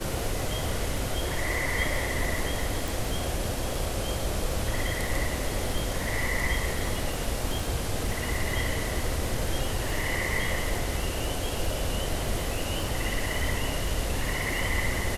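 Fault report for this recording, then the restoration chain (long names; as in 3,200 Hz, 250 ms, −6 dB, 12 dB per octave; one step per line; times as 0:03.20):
surface crackle 33 per second −32 dBFS
0:02.88: click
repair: click removal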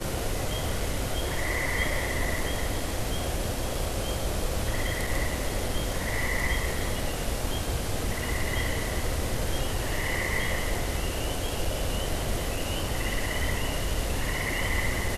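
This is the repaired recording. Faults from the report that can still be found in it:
none of them is left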